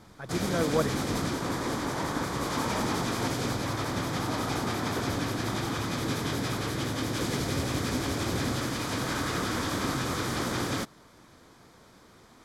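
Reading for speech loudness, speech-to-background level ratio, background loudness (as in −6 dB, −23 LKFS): −31.0 LKFS, −0.5 dB, −30.5 LKFS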